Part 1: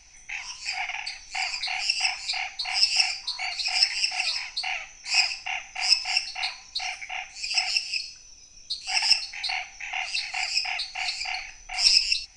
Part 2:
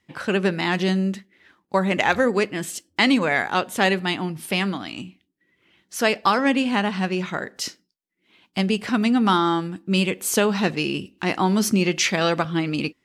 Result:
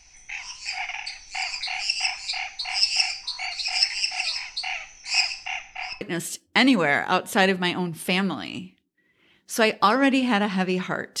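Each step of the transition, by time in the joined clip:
part 1
5.59–6.01 LPF 6100 Hz -> 1300 Hz
6.01 switch to part 2 from 2.44 s

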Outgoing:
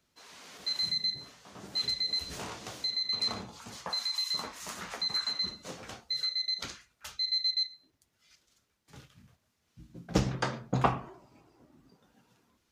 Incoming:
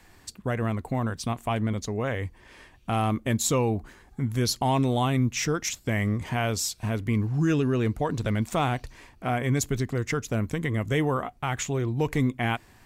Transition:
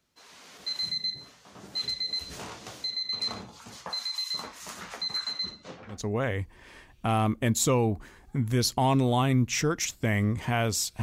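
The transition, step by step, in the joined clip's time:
outgoing
5.44–6.06 LPF 9100 Hz -> 1200 Hz
5.96 switch to incoming from 1.8 s, crossfade 0.20 s

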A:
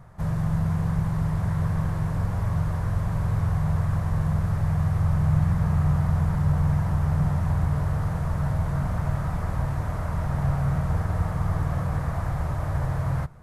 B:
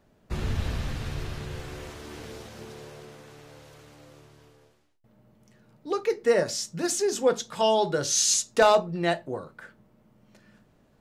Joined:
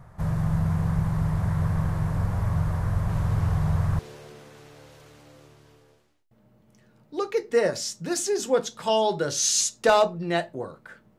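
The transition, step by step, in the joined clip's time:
A
3.09 add B from 1.82 s 0.90 s -6.5 dB
3.99 switch to B from 2.72 s

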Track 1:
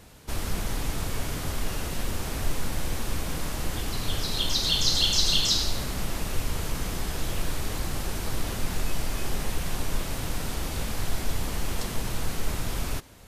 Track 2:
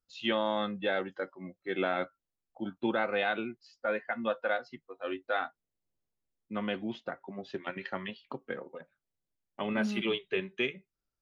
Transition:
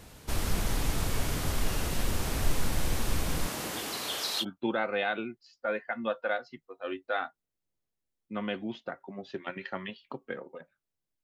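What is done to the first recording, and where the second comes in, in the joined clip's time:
track 1
3.46–4.45 HPF 160 Hz -> 710 Hz
4.42 switch to track 2 from 2.62 s, crossfade 0.06 s

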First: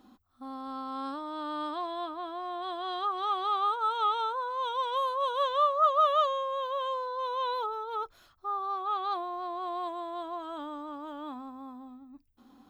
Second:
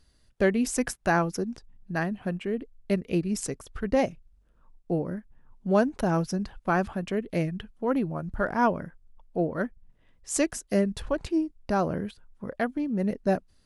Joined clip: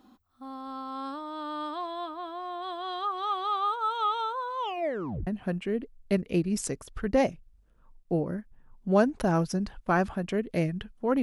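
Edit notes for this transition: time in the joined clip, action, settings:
first
4.58 tape stop 0.69 s
5.27 switch to second from 2.06 s

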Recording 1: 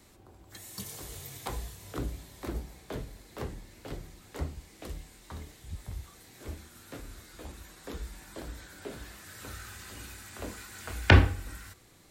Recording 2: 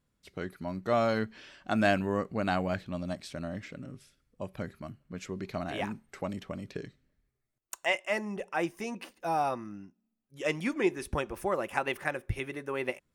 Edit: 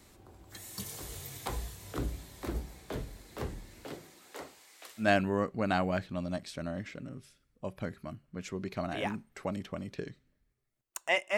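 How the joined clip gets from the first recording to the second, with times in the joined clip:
recording 1
3.84–5.09 HPF 170 Hz -> 1500 Hz
5.03 switch to recording 2 from 1.8 s, crossfade 0.12 s

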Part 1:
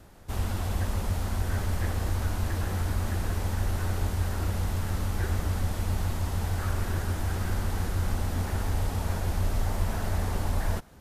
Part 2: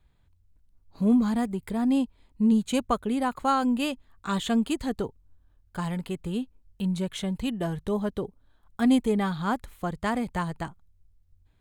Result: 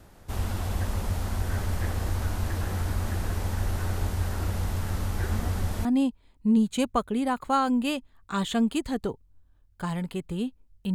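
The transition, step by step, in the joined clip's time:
part 1
5.31 add part 2 from 1.26 s 0.54 s -13.5 dB
5.85 switch to part 2 from 1.8 s

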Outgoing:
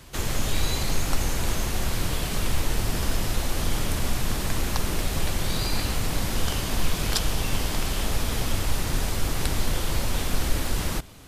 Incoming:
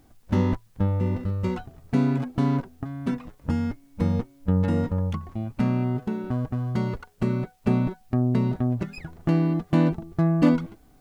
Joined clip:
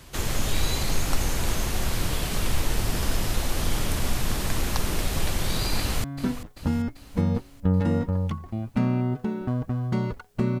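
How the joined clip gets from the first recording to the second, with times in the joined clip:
outgoing
5.78–6.04 echo throw 0.39 s, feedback 60%, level -12.5 dB
6.04 switch to incoming from 2.87 s

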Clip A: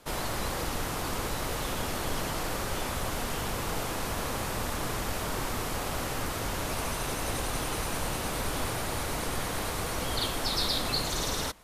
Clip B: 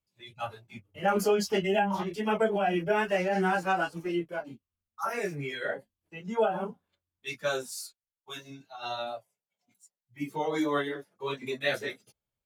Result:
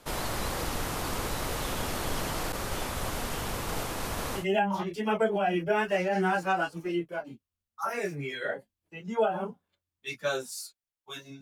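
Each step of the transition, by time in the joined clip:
clip A
2.52–4.46 expander -30 dBFS
4.4 switch to clip B from 1.6 s, crossfade 0.12 s

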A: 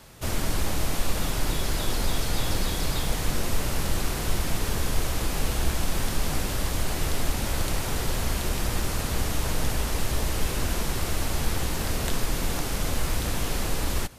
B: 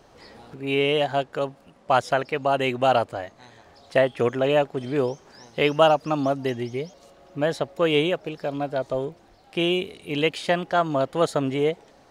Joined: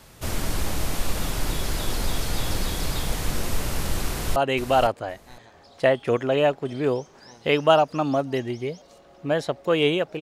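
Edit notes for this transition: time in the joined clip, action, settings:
A
4.06–4.36 echo throw 0.51 s, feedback 15%, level -8.5 dB
4.36 switch to B from 2.48 s

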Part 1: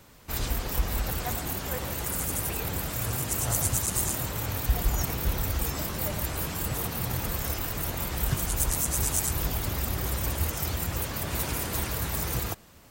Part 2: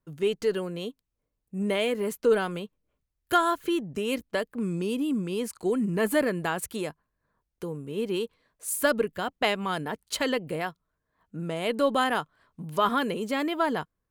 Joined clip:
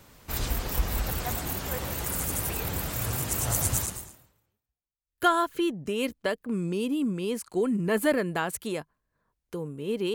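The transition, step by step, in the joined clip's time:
part 1
4.53 switch to part 2 from 2.62 s, crossfade 1.42 s exponential

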